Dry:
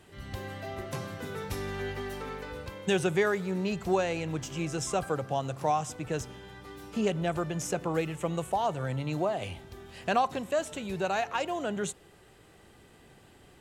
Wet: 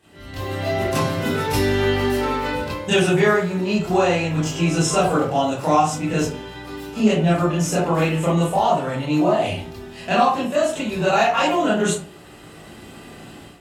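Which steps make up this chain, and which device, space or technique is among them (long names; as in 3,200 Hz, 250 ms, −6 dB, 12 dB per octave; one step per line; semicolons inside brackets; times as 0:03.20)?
far laptop microphone (convolution reverb RT60 0.40 s, pre-delay 22 ms, DRR −9 dB; high-pass filter 140 Hz 6 dB per octave; automatic gain control)
level −4 dB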